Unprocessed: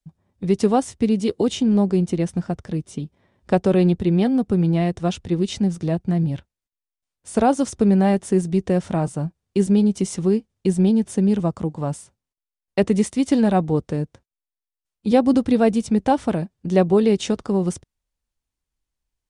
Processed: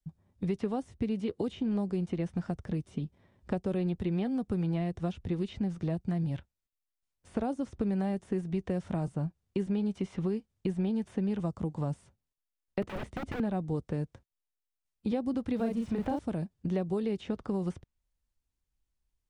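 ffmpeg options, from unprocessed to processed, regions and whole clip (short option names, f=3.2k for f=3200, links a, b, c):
-filter_complex "[0:a]asettb=1/sr,asplit=3[a][b][c];[a]atrim=end=12.824[d];[b]atrim=start=12.82:end=13.4,asetpts=PTS-STARTPTS,afade=t=in:d=0.004:c=qsin,afade=t=out:st=0.576:d=0.004:c=qsin,asubboost=boost=9:cutoff=110,aeval=exprs='(mod(10.6*val(0)+1,2)-1)/10.6':c=same[e];[c]atrim=start=13.396[f];[d][e]acrossfade=d=0.004:c1=hsin:c2=qsin[g];[g][f]acrossfade=d=0.004:c1=qsin:c2=hsin,asettb=1/sr,asplit=3[h][i][j];[h]atrim=end=15.564[k];[i]atrim=start=15.56:end=16.19,asetpts=PTS-STARTPTS,afade=t=in:d=0.004:c=qsin,afade=t=out:st=0.626:d=0.004:c=qsin,aeval=exprs='val(0)+0.5*0.0211*sgn(val(0))':c=same,asplit=2[l][m];[m]adelay=35,volume=-2dB[n];[l][n]amix=inputs=2:normalize=0,atrim=end_sample=27783[o];[j]atrim=start=16.186[p];[k][o]acrossfade=d=0.004:c1=hsin:c2=qsin[q];[q][p]acrossfade=d=0.004:c1=qsin:c2=hsin,acrossover=split=600|4100[r][s][t];[r]acompressor=threshold=-29dB:ratio=4[u];[s]acompressor=threshold=-38dB:ratio=4[v];[t]acompressor=threshold=-50dB:ratio=4[w];[u][v][w]amix=inputs=3:normalize=0,lowshelf=f=190:g=6.5,acrossover=split=3200[x][y];[y]acompressor=threshold=-56dB:ratio=4:attack=1:release=60[z];[x][z]amix=inputs=2:normalize=0,volume=-5dB"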